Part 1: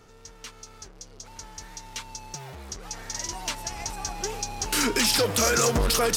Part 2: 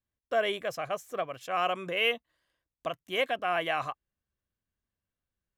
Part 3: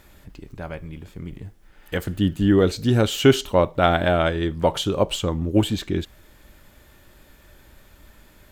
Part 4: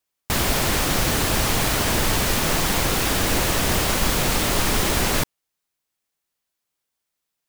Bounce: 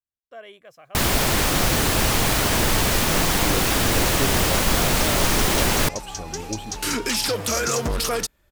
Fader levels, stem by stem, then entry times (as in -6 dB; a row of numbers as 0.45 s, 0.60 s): -1.0 dB, -13.5 dB, -13.5 dB, +1.0 dB; 2.10 s, 0.00 s, 0.95 s, 0.65 s